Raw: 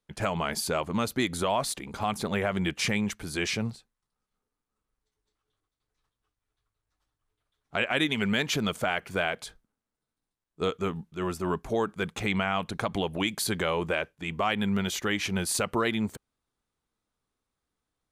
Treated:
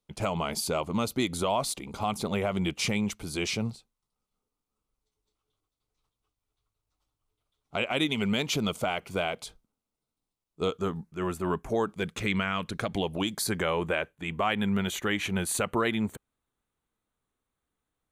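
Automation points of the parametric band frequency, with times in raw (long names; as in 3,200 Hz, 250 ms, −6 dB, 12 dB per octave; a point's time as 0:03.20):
parametric band −13 dB 0.35 octaves
0:10.67 1,700 Hz
0:11.51 6,600 Hz
0:12.17 760 Hz
0:12.73 760 Hz
0:13.72 5,100 Hz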